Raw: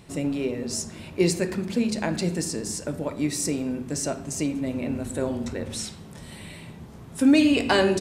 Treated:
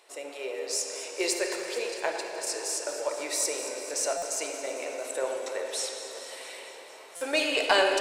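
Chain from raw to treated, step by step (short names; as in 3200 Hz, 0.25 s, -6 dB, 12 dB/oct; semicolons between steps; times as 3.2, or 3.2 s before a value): inverse Chebyshev high-pass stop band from 230 Hz, stop band 40 dB; 1.91–2.47 gate -30 dBFS, range -11 dB; AGC gain up to 4 dB; in parallel at -10 dB: one-sided clip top -20.5 dBFS; on the sum: echo with dull and thin repeats by turns 0.112 s, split 2000 Hz, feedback 83%, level -12 dB; on a send at -4 dB: reverb RT60 4.0 s, pre-delay 45 ms; on the sum: stuck buffer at 4.17/7.16, samples 256, times 8; gain -6 dB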